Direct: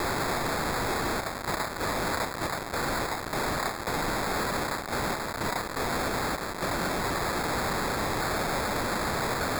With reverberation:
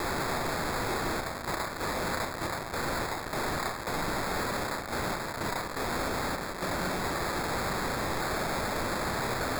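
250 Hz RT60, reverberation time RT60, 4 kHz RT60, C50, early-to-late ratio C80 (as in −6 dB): 0.70 s, 0.55 s, 0.40 s, 11.0 dB, 15.5 dB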